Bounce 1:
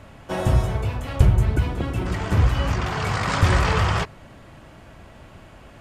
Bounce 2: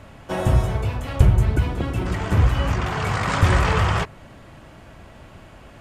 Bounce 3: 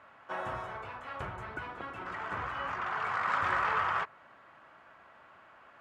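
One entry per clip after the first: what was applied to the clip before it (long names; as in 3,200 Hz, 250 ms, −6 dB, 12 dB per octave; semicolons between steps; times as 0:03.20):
dynamic equaliser 4,800 Hz, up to −4 dB, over −44 dBFS, Q 1.7; level +1 dB
resonant band-pass 1,300 Hz, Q 1.8; level −3 dB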